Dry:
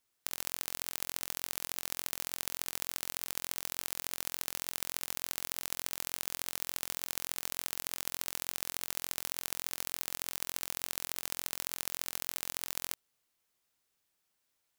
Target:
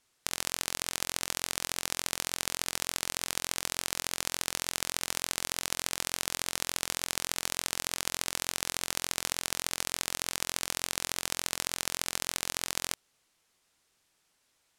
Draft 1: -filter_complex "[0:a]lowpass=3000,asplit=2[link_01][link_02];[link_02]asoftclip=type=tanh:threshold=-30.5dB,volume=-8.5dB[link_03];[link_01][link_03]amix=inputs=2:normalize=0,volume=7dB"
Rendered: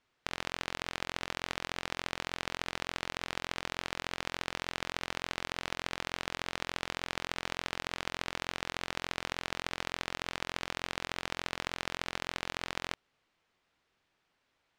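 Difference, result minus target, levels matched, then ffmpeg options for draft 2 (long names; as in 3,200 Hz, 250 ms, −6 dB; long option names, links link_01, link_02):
8,000 Hz band −10.5 dB
-filter_complex "[0:a]lowpass=10000,asplit=2[link_01][link_02];[link_02]asoftclip=type=tanh:threshold=-30.5dB,volume=-8.5dB[link_03];[link_01][link_03]amix=inputs=2:normalize=0,volume=7dB"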